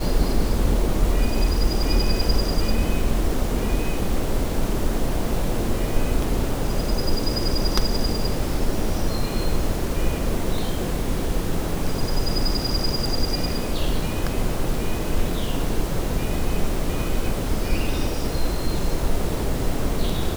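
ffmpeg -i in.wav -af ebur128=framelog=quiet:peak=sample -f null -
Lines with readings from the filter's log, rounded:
Integrated loudness:
  I:         -25.4 LUFS
  Threshold: -35.4 LUFS
Loudness range:
  LRA:         2.7 LU
  Threshold: -45.5 LUFS
  LRA low:   -26.5 LUFS
  LRA high:  -23.8 LUFS
Sample peak:
  Peak:       -3.6 dBFS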